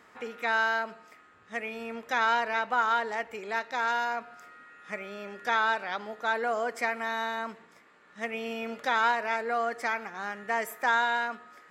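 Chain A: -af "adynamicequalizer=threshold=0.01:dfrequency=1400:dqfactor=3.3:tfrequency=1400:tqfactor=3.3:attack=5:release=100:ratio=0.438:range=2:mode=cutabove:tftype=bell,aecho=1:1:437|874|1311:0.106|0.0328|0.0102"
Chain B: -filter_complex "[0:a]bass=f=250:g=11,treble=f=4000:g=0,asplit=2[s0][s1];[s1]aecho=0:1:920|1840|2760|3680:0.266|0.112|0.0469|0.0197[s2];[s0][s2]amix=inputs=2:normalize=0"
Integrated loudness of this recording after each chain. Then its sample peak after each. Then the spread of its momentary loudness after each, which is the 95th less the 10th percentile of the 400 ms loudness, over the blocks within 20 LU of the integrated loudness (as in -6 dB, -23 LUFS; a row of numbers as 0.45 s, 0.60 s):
-30.0 LUFS, -29.0 LUFS; -14.0 dBFS, -13.5 dBFS; 14 LU, 14 LU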